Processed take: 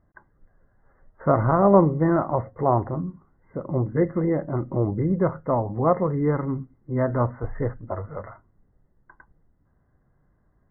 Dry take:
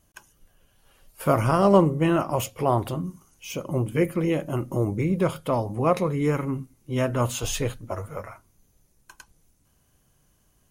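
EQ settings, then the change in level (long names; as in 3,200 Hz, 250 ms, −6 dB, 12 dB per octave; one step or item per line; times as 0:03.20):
high-frequency loss of the air 450 metres
dynamic equaliser 810 Hz, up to +3 dB, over −35 dBFS, Q 1.5
linear-phase brick-wall low-pass 2,100 Hz
+1.5 dB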